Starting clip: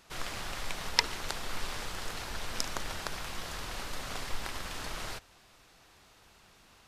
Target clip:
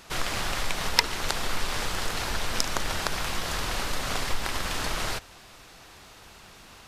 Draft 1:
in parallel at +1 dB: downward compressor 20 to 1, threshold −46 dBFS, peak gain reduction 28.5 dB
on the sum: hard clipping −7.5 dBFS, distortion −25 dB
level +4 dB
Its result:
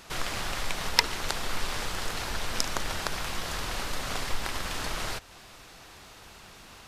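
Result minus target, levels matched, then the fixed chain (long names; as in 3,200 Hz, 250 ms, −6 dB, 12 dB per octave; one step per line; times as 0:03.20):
downward compressor: peak gain reduction +10 dB
in parallel at +1 dB: downward compressor 20 to 1, threshold −35.5 dBFS, peak gain reduction 18.5 dB
on the sum: hard clipping −7.5 dBFS, distortion −24 dB
level +4 dB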